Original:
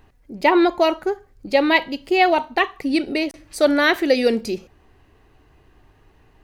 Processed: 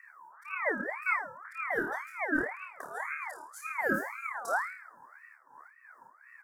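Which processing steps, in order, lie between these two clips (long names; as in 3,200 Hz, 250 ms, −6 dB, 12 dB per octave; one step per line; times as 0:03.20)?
elliptic band-stop filter 700–7,000 Hz, stop band 40 dB
parametric band 380 Hz +8.5 dB 0.21 octaves
comb filter 1.5 ms, depth 69%
dynamic equaliser 180 Hz, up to −5 dB, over −33 dBFS, Q 1.1
reversed playback
downward compressor 6 to 1, threshold −22 dBFS, peak gain reduction 13.5 dB
reversed playback
volume swells 241 ms
on a send: flutter between parallel walls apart 4.6 metres, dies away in 0.52 s
on the sum: ring modulator whose carrier an LFO sweeps 1,400 Hz, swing 35%, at 1.9 Hz
level −2.5 dB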